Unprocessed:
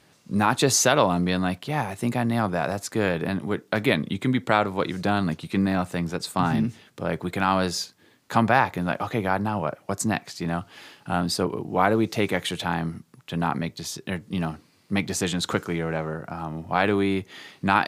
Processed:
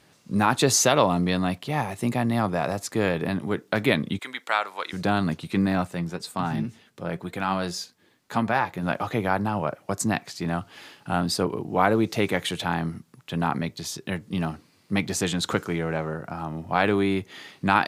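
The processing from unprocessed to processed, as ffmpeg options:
-filter_complex "[0:a]asettb=1/sr,asplit=3[s0][s1][s2];[s0]atrim=end=0.854[s3];[s1]atrim=start=0.85:end=3.35,asetpts=PTS-STARTPTS,afade=t=in:d=0.004:c=qsin,afade=t=out:st=2.496:d=0.004:c=qsin,bandreject=f=1500:w=12[s4];[s2]atrim=start=3.346[s5];[s3][s4]acrossfade=d=0.004:c1=hsin:c2=qsin[s6];[s6][s5]acrossfade=d=0.004:c1=qsin:c2=hsin,asettb=1/sr,asplit=3[s7][s8][s9];[s7]atrim=end=4.194[s10];[s8]atrim=start=4.19:end=4.93,asetpts=PTS-STARTPTS,afade=t=in:d=0.004:c=qsin,afade=t=out:st=0.736:d=0.004:c=qsin,highpass=940[s11];[s9]atrim=start=4.926[s12];[s10][s11]acrossfade=d=0.004:c1=hsin:c2=qsin[s13];[s13][s12]acrossfade=d=0.004:c1=qsin:c2=hsin,asplit=3[s14][s15][s16];[s14]afade=t=out:st=5.86:d=0.02[s17];[s15]flanger=delay=3.8:depth=2.5:regen=68:speed=1.9:shape=triangular,afade=t=in:st=5.86:d=0.02,afade=t=out:st=8.82:d=0.02[s18];[s16]afade=t=in:st=8.82:d=0.02[s19];[s17][s18][s19]amix=inputs=3:normalize=0"

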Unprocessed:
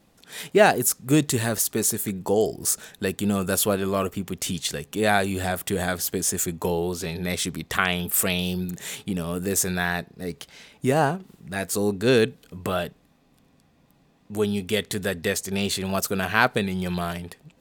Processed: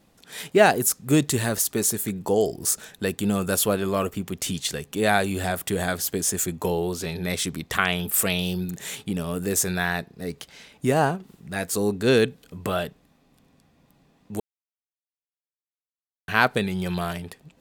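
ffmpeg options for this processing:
-filter_complex "[0:a]asplit=3[s0][s1][s2];[s0]atrim=end=14.4,asetpts=PTS-STARTPTS,afade=t=out:st=14.396:d=0.004:c=hsin[s3];[s1]atrim=start=14.4:end=16.28,asetpts=PTS-STARTPTS,volume=0[s4];[s2]atrim=start=16.28,asetpts=PTS-STARTPTS,afade=t=in:d=0.004:c=hsin[s5];[s3][s4][s5]concat=n=3:v=0:a=1"

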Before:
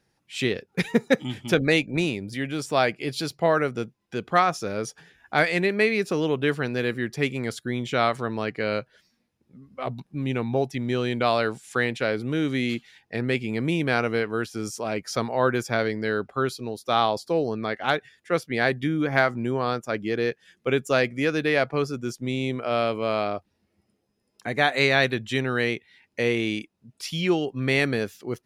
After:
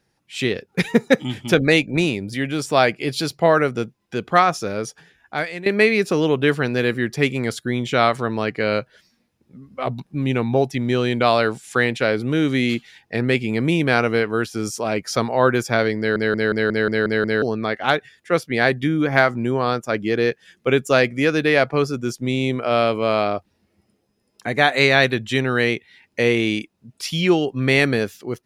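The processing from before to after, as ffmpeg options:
-filter_complex "[0:a]asplit=10[s0][s1][s2][s3][s4][s5][s6][s7][s8][s9];[s0]atrim=end=5.66,asetpts=PTS-STARTPTS,afade=t=out:st=4.57:d=1.09:silence=0.149624[s10];[s1]atrim=start=5.66:end=16.162,asetpts=PTS-STARTPTS,afade=t=in:d=0.004:c=hsin:silence=0.149624[s11];[s2]atrim=start=15.978:end=16.162[s12];[s3]atrim=start=15.978:end=16.162[s13];[s4]atrim=start=15.978:end=16.162[s14];[s5]atrim=start=15.978:end=16.162[s15];[s6]atrim=start=15.978:end=16.162[s16];[s7]atrim=start=15.978:end=16.162[s17];[s8]atrim=start=15.978:end=16.162[s18];[s9]atrim=start=17.418[s19];[s10][s11]concat=n=2:v=0:a=1[s20];[s20][s12]acrossfade=d=0.004:c1=hsin:c2=hsin[s21];[s21][s13]acrossfade=d=0.004:c1=hsin:c2=hsin[s22];[s22][s14]acrossfade=d=0.004:c1=hsin:c2=hsin[s23];[s23][s15]acrossfade=d=0.004:c1=hsin:c2=hsin[s24];[s24][s16]acrossfade=d=0.004:c1=hsin:c2=hsin[s25];[s25][s17]acrossfade=d=0.004:c1=hsin:c2=hsin[s26];[s26][s18]acrossfade=d=0.004:c1=hsin:c2=hsin[s27];[s27][s19]acrossfade=d=0.004:c1=hsin:c2=hsin,dynaudnorm=f=220:g=5:m=1.58,volume=1.26"

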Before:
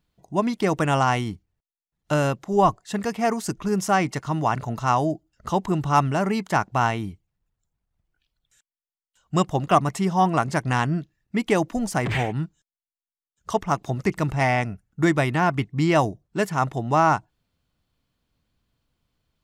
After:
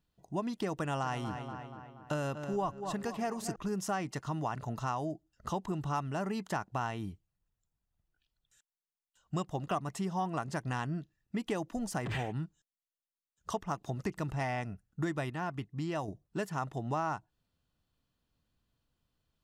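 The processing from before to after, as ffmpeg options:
-filter_complex "[0:a]asettb=1/sr,asplit=3[s0][s1][s2];[s0]atrim=end=0.774[s3];[s1]atrim=start=0.77:end=3.56,asetpts=PTS-STARTPTS,afade=t=in:d=0.004:c=qsin,afade=t=out:st=2.786:d=0.004:c=qsin,asplit=2[s4][s5];[s5]adelay=239,lowpass=f=3700:p=1,volume=0.237,asplit=2[s6][s7];[s7]adelay=239,lowpass=f=3700:p=1,volume=0.54,asplit=2[s8][s9];[s9]adelay=239,lowpass=f=3700:p=1,volume=0.54,asplit=2[s10][s11];[s11]adelay=239,lowpass=f=3700:p=1,volume=0.54,asplit=2[s12][s13];[s13]adelay=239,lowpass=f=3700:p=1,volume=0.54,asplit=2[s14][s15];[s15]adelay=239,lowpass=f=3700:p=1,volume=0.54[s16];[s4][s6][s8][s10][s12][s14][s16]amix=inputs=7:normalize=0,atrim=end_sample=123039[s17];[s2]atrim=start=3.556[s18];[s3][s17]acrossfade=d=0.004:c1=hsin:c2=qsin[s19];[s19][s18]acrossfade=d=0.004:c1=qsin:c2=hsin,asplit=3[s20][s21][s22];[s20]atrim=end=15.302[s23];[s21]atrim=start=15.298:end=16.082,asetpts=PTS-STARTPTS,volume=0.501[s24];[s22]atrim=start=16.078[s25];[s23][s24]acrossfade=d=0.004:c1=hsin:c2=hsin[s26];[s26][s25]acrossfade=d=0.004:c1=hsin:c2=hsin,bandreject=f=2200:w=9.5,acompressor=threshold=0.0447:ratio=3,volume=0.501"

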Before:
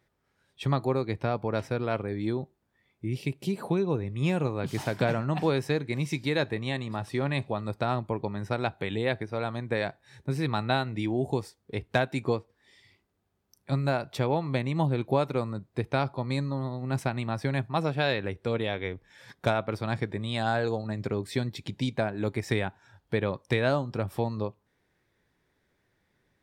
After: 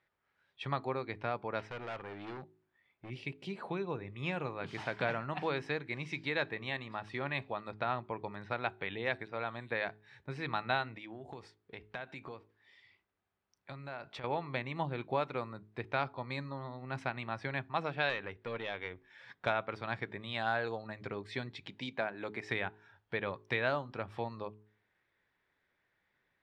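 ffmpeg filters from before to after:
-filter_complex "[0:a]asplit=3[s0][s1][s2];[s0]afade=t=out:st=1.61:d=0.02[s3];[s1]volume=35.5,asoftclip=hard,volume=0.0282,afade=t=in:st=1.61:d=0.02,afade=t=out:st=3.09:d=0.02[s4];[s2]afade=t=in:st=3.09:d=0.02[s5];[s3][s4][s5]amix=inputs=3:normalize=0,asettb=1/sr,asplit=3[s6][s7][s8];[s6]atrim=end=7.724[s9];[s7]atrim=start=7.72:end=9.89,asetpts=PTS-STARTPTS,afade=t=in:d=0.004:c=qsin,afade=t=out:st=2.166:d=0.004:c=qsin,acrossover=split=6000[s10][s11];[s11]adelay=610[s12];[s10][s12]amix=inputs=2:normalize=0,atrim=end_sample=95697[s13];[s8]atrim=start=9.886[s14];[s9][s13]acrossfade=d=0.004:c1=hsin:c2=qsin[s15];[s15][s14]acrossfade=d=0.004:c1=qsin:c2=hsin,asettb=1/sr,asplit=3[s16][s17][s18];[s16]atrim=end=10.964[s19];[s17]atrim=start=10.96:end=14.24,asetpts=PTS-STARTPTS,afade=t=in:d=0.004:c=qsin,afade=t=out:st=3.276:d=0.004:c=qsin,acompressor=threshold=0.0251:ratio=6:attack=3.2:release=140:knee=1:detection=peak[s20];[s18]atrim=start=14.236[s21];[s19][s20]acrossfade=d=0.004:c1=hsin:c2=qsin[s22];[s22][s21]acrossfade=d=0.004:c1=qsin:c2=hsin,asettb=1/sr,asplit=3[s23][s24][s25];[s23]atrim=end=18.094[s26];[s24]atrim=start=18.09:end=18.91,asetpts=PTS-STARTPTS,afade=t=in:d=0.004:c=qsin,afade=t=out:st=0.816:d=0.004:c=qsin,aeval=exprs='(tanh(7.94*val(0)+0.35)-tanh(0.35))/7.94':c=same[s27];[s25]atrim=start=18.906[s28];[s26][s27]acrossfade=d=0.004:c1=hsin:c2=qsin[s29];[s29][s28]acrossfade=d=0.004:c1=qsin:c2=hsin,asettb=1/sr,asplit=3[s30][s31][s32];[s30]atrim=end=21.664[s33];[s31]atrim=start=21.66:end=22.49,asetpts=PTS-STARTPTS,afade=t=in:d=0.004:c=qsin,afade=t=out:st=0.826:d=0.004:c=qsin,highpass=160[s34];[s32]atrim=start=22.486[s35];[s33][s34]acrossfade=d=0.004:c1=hsin:c2=qsin[s36];[s36][s35]acrossfade=d=0.004:c1=qsin:c2=hsin,lowpass=2600,tiltshelf=f=730:g=-7.5,bandreject=f=53.04:t=h:w=4,bandreject=f=106.08:t=h:w=4,bandreject=f=159.12:t=h:w=4,bandreject=f=212.16:t=h:w=4,bandreject=f=265.2:t=h:w=4,bandreject=f=318.24:t=h:w=4,bandreject=f=371.28:t=h:w=4,bandreject=f=424.32:t=h:w=4,volume=0.501"

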